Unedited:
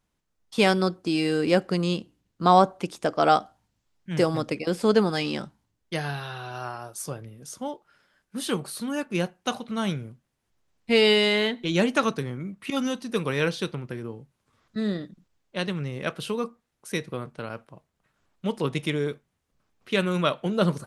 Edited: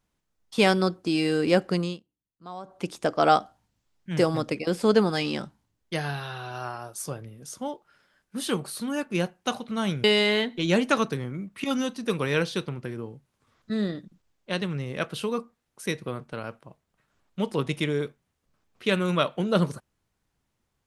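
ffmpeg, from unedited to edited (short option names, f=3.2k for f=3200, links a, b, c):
-filter_complex "[0:a]asplit=4[a][b][c][d];[a]atrim=end=2,asetpts=PTS-STARTPTS,afade=t=out:st=1.77:d=0.23:silence=0.0749894[e];[b]atrim=start=2:end=2.64,asetpts=PTS-STARTPTS,volume=-22.5dB[f];[c]atrim=start=2.64:end=10.042,asetpts=PTS-STARTPTS,afade=t=in:d=0.23:silence=0.0749894[g];[d]atrim=start=11.098[h];[e][f][g]concat=n=3:v=0:a=1[i];[i][h]acrossfade=d=0.004:c1=hsin:c2=hsin"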